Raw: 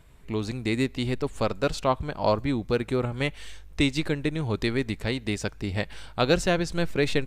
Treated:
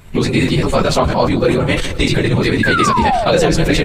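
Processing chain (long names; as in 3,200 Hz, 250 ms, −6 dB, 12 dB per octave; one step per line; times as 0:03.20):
random phases in long frames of 100 ms
noise gate −38 dBFS, range −7 dB
downward compressor 2.5 to 1, threshold −37 dBFS, peak gain reduction 13.5 dB
sound drawn into the spectrogram fall, 0:04.96–0:06.64, 410–1,700 Hz −37 dBFS
flanger 0.52 Hz, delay 4.9 ms, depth 1.4 ms, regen −49%
time stretch by overlap-add 0.53×, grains 24 ms
repeating echo 169 ms, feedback 54%, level −19.5 dB
boost into a limiter +28.5 dB
level that may fall only so fast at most 45 dB per second
level −2 dB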